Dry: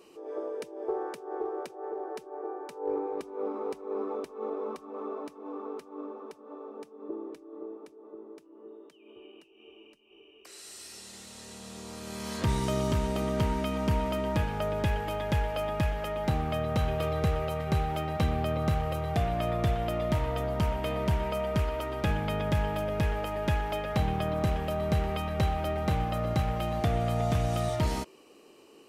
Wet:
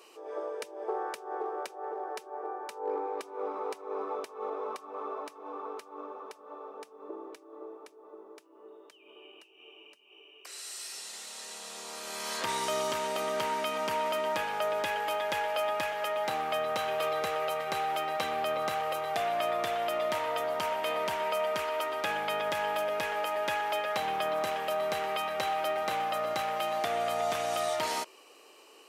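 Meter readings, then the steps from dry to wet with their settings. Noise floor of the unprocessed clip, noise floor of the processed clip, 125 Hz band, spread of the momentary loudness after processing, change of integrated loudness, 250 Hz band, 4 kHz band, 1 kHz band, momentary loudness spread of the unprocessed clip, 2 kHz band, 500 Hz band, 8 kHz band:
−56 dBFS, −57 dBFS, −24.5 dB, 13 LU, −1.5 dB, −12.5 dB, +4.0 dB, +3.5 dB, 15 LU, +4.5 dB, 0.0 dB, +4.5 dB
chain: high-pass filter 650 Hz 12 dB per octave
in parallel at −2.5 dB: brickwall limiter −27 dBFS, peak gain reduction 6.5 dB

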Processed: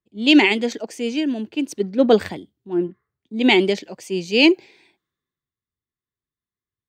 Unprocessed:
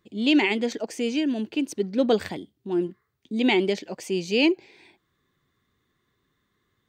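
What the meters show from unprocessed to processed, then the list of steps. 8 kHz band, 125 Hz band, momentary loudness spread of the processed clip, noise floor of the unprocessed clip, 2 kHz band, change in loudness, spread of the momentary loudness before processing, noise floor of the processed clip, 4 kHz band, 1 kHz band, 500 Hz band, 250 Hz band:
+2.5 dB, +3.5 dB, 14 LU, −75 dBFS, +7.0 dB, +6.0 dB, 11 LU, below −85 dBFS, +7.5 dB, +6.0 dB, +5.0 dB, +5.0 dB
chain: multiband upward and downward expander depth 70%
level +4 dB

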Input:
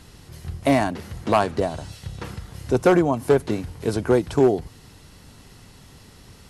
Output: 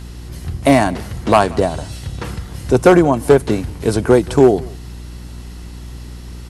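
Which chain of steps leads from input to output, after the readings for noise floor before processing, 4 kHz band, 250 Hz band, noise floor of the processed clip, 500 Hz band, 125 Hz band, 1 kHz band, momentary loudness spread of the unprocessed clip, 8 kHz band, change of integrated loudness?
−49 dBFS, +7.0 dB, +7.0 dB, −33 dBFS, +7.0 dB, +7.5 dB, +7.0 dB, 18 LU, +9.0 dB, +7.0 dB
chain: dynamic equaliser 8,900 Hz, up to +4 dB, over −55 dBFS, Q 2.4
hum with harmonics 60 Hz, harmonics 6, −39 dBFS −8 dB per octave
single-tap delay 180 ms −23 dB
level +7 dB

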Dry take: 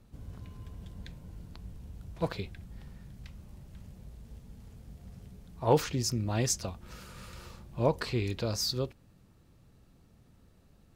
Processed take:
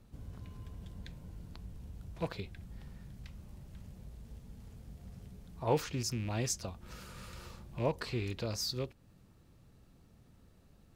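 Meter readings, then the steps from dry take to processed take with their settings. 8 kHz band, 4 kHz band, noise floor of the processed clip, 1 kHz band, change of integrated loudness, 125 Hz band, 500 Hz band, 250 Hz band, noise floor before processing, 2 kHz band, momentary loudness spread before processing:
−5.0 dB, −4.5 dB, −63 dBFS, −5.5 dB, −7.5 dB, −4.5 dB, −5.5 dB, −5.0 dB, −62 dBFS, −3.5 dB, 21 LU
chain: loose part that buzzes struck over −32 dBFS, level −33 dBFS
in parallel at −1 dB: downward compressor, threshold −42 dBFS, peak gain reduction 22 dB
on the sum: level −6.5 dB

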